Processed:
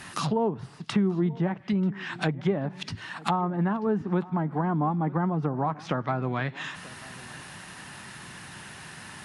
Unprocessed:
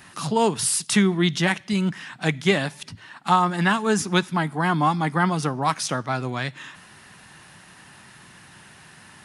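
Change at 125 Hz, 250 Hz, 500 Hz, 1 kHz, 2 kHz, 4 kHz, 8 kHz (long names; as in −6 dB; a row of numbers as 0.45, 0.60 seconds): −2.5, −3.0, −4.0, −7.0, −10.0, −11.0, −17.5 decibels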